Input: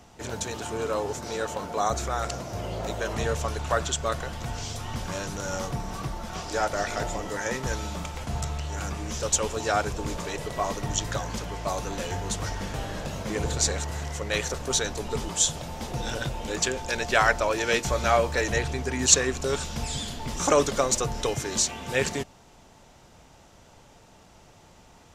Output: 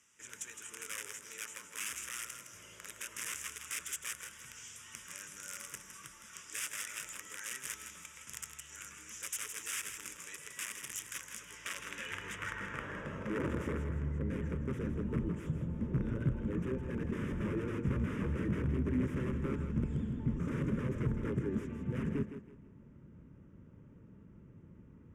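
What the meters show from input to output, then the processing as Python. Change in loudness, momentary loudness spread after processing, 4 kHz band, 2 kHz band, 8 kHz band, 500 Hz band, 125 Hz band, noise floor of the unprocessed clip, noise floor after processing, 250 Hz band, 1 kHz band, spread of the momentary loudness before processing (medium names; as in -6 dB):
-11.0 dB, 16 LU, -16.5 dB, -12.5 dB, -14.0 dB, -15.5 dB, -5.0 dB, -54 dBFS, -57 dBFS, -3.0 dB, -20.5 dB, 11 LU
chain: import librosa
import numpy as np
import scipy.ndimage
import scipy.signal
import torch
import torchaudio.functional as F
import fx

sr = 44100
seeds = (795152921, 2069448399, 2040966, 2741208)

p1 = fx.dynamic_eq(x, sr, hz=5500.0, q=1.1, threshold_db=-44.0, ratio=4.0, max_db=-5)
p2 = (np.mod(10.0 ** (22.0 / 20.0) * p1 + 1.0, 2.0) - 1.0) / 10.0 ** (22.0 / 20.0)
p3 = fx.low_shelf(p2, sr, hz=240.0, db=7.0)
p4 = fx.filter_sweep_bandpass(p3, sr, from_hz=7100.0, to_hz=220.0, start_s=11.29, end_s=14.16, q=0.8)
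p5 = scipy.signal.sosfilt(scipy.signal.butter(2, 12000.0, 'lowpass', fs=sr, output='sos'), p4)
p6 = fx.fixed_phaser(p5, sr, hz=1800.0, stages=4)
y = p6 + fx.echo_thinned(p6, sr, ms=162, feedback_pct=30, hz=220.0, wet_db=-8.5, dry=0)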